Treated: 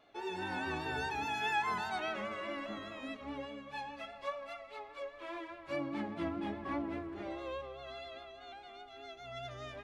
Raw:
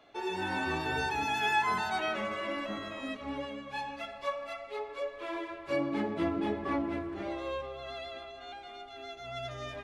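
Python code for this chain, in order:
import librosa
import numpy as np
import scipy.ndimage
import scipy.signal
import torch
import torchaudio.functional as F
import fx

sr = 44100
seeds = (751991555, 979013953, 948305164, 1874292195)

y = fx.high_shelf(x, sr, hz=8900.0, db=-4.0)
y = fx.vibrato(y, sr, rate_hz=4.9, depth_cents=40.0)
y = fx.peak_eq(y, sr, hz=440.0, db=-10.5, octaves=0.35, at=(4.62, 6.76))
y = y * librosa.db_to_amplitude(-5.0)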